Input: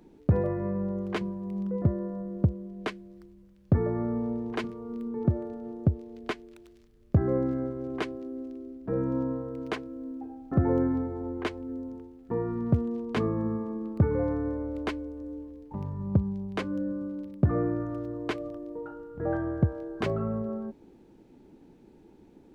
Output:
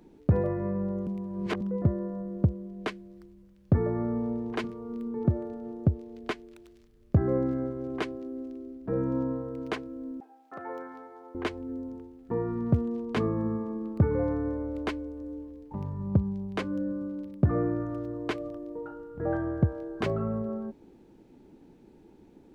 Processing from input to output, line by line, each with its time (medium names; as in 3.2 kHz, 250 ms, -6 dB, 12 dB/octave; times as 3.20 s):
1.07–1.61 s: reverse
10.20–11.35 s: high-pass 880 Hz